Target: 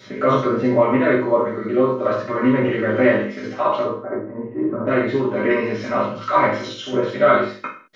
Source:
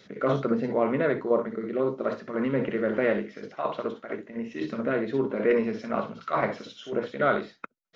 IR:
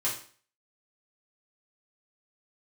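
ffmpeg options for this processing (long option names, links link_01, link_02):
-filter_complex "[0:a]asettb=1/sr,asplit=3[link_01][link_02][link_03];[link_01]atrim=end=3.834[link_04];[link_02]atrim=start=3.83:end=4.87,asetpts=PTS-STARTPTS,afade=type=in:duration=0.004:curve=qsin,afade=type=out:start_time=1.036:duration=0.004:curve=qsin,lowpass=frequency=1200:width=0.5412,lowpass=frequency=1200:width=1.3066[link_05];[link_03]atrim=start=4.866[link_06];[link_04][link_05]acrossfade=duration=0.004:curve1=hsin:curve2=qsin[link_07];[link_07][link_06]acrossfade=duration=0.004:curve1=qsin:curve2=hsin,asplit=2[link_08][link_09];[link_09]acompressor=threshold=-33dB:ratio=6,volume=0dB[link_10];[link_08][link_10]amix=inputs=2:normalize=0[link_11];[1:a]atrim=start_sample=2205,afade=type=out:start_time=0.28:duration=0.01,atrim=end_sample=12789[link_12];[link_11][link_12]afir=irnorm=-1:irlink=0,volume=1dB"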